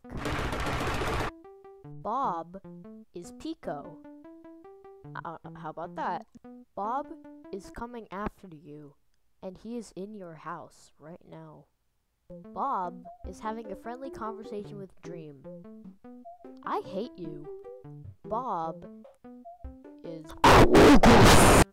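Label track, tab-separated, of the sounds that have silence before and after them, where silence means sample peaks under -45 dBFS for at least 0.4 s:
9.430000	11.590000	sound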